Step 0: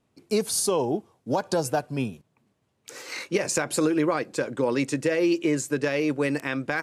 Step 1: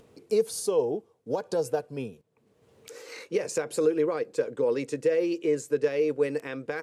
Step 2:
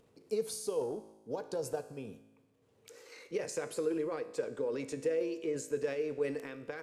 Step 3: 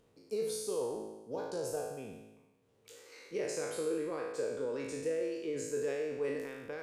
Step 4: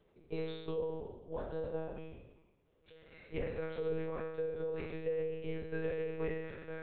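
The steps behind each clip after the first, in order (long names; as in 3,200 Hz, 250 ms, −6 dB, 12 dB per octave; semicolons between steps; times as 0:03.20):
parametric band 460 Hz +14.5 dB 0.37 octaves; upward compression, threshold −32 dBFS; level −9 dB
transient designer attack +3 dB, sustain +8 dB; tuned comb filter 54 Hz, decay 1.1 s, harmonics all, mix 60%; level −4.5 dB
peak hold with a decay on every bin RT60 1.07 s; level −4 dB
one-pitch LPC vocoder at 8 kHz 160 Hz; level −1.5 dB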